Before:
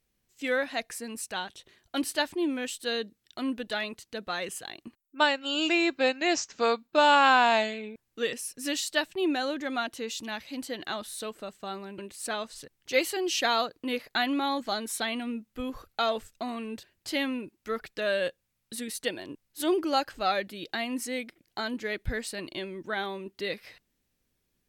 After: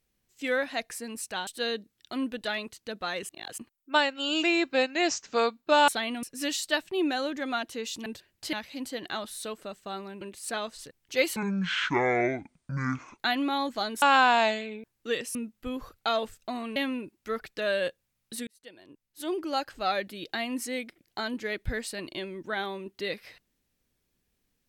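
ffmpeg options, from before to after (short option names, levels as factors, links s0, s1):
-filter_complex "[0:a]asplit=14[s0][s1][s2][s3][s4][s5][s6][s7][s8][s9][s10][s11][s12][s13];[s0]atrim=end=1.472[s14];[s1]atrim=start=2.728:end=4.552[s15];[s2]atrim=start=4.548:end=4.842,asetpts=PTS-STARTPTS,areverse[s16];[s3]atrim=start=4.838:end=7.142[s17];[s4]atrim=start=14.928:end=15.282[s18];[s5]atrim=start=8.468:end=10.302[s19];[s6]atrim=start=16.688:end=17.162[s20];[s7]atrim=start=10.298:end=13.134[s21];[s8]atrim=start=13.13:end=14.1,asetpts=PTS-STARTPTS,asetrate=23373,aresample=44100,atrim=end_sample=80711,asetpts=PTS-STARTPTS[s22];[s9]atrim=start=14.096:end=14.932[s23];[s10]atrim=start=7.138:end=8.472[s24];[s11]atrim=start=15.278:end=16.692[s25];[s12]atrim=start=17.158:end=18.87,asetpts=PTS-STARTPTS,afade=t=out:st=1.708:d=0.004:c=hsin[s26];[s13]atrim=start=18.87,asetpts=PTS-STARTPTS,afade=t=in:d=1.61[s27];[s14][s15]acrossfade=d=0.004:c1=hsin:c2=hsin[s28];[s28][s16]acrossfade=d=0.004:c1=hsin:c2=hsin[s29];[s29][s17]acrossfade=d=0.004:c1=hsin:c2=hsin[s30];[s30][s18]acrossfade=d=0.004:c1=hsin:c2=hsin[s31];[s31][s19]acrossfade=d=0.004:c1=hsin:c2=hsin[s32];[s32][s20]acrossfade=d=0.004:c1=hsin:c2=hsin[s33];[s33][s21]acrossfade=d=0.004:c1=hsin:c2=hsin[s34];[s34][s22]acrossfade=d=0.004:c1=hsin:c2=hsin[s35];[s35][s23]acrossfade=d=0.004:c1=hsin:c2=hsin[s36];[s36][s24]acrossfade=d=0.004:c1=hsin:c2=hsin[s37];[s37][s25]acrossfade=d=0.004:c1=hsin:c2=hsin[s38];[s26][s27]concat=n=2:v=0:a=1[s39];[s38][s39]acrossfade=d=0.004:c1=hsin:c2=hsin"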